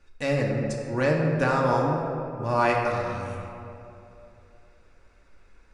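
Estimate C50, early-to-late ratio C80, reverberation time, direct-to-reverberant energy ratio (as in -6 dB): 1.5 dB, 3.0 dB, 2.9 s, -2.0 dB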